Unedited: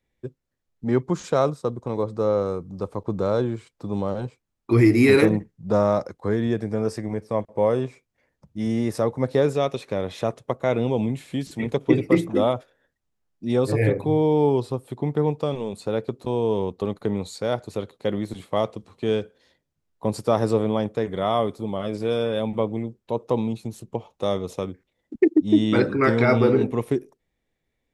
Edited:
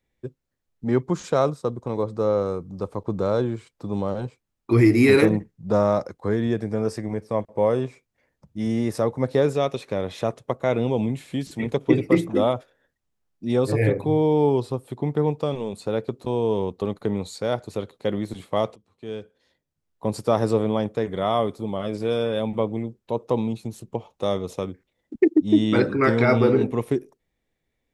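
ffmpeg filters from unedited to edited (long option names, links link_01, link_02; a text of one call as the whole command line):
ffmpeg -i in.wav -filter_complex "[0:a]asplit=2[link_01][link_02];[link_01]atrim=end=18.76,asetpts=PTS-STARTPTS,afade=type=out:start_time=18.756:duration=0.004:curve=hsin:silence=0.0891251[link_03];[link_02]atrim=start=18.76,asetpts=PTS-STARTPTS,afade=type=in:duration=1.47:silence=0.0891251[link_04];[link_03][link_04]concat=n=2:v=0:a=1" out.wav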